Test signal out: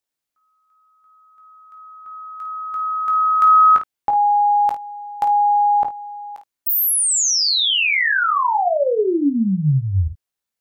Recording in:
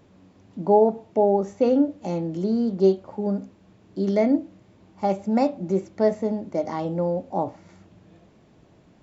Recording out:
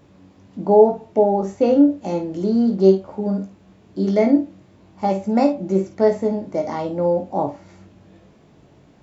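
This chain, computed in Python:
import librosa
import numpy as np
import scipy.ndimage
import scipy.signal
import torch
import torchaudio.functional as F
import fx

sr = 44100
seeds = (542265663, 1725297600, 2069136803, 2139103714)

p1 = fx.doubler(x, sr, ms=21.0, db=-8)
p2 = p1 + fx.room_early_taps(p1, sr, ms=(14, 52), db=(-10.0, -9.5), dry=0)
y = p2 * librosa.db_to_amplitude(2.5)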